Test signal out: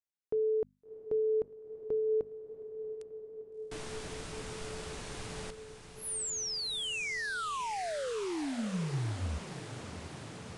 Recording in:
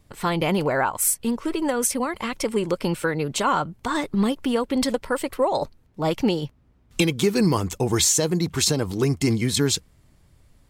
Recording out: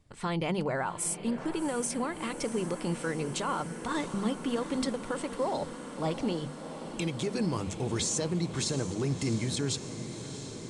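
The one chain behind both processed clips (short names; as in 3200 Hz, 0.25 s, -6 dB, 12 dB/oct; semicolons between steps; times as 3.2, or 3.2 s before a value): downsampling 22050 Hz; bell 140 Hz +3.5 dB 1.5 oct; limiter -14 dBFS; notches 50/100/150/200/250 Hz; on a send: diffused feedback echo 0.692 s, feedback 79%, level -12 dB; on the sum: gain -8 dB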